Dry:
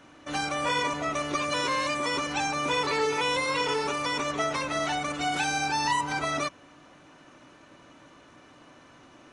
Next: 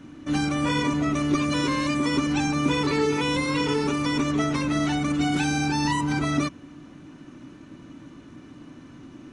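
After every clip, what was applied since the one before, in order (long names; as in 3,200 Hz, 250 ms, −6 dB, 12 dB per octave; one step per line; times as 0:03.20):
low shelf with overshoot 400 Hz +11.5 dB, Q 1.5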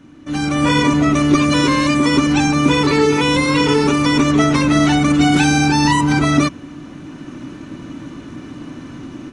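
automatic gain control gain up to 12.5 dB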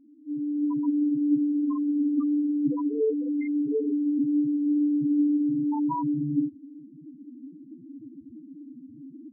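spectral peaks only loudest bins 2
level −7.5 dB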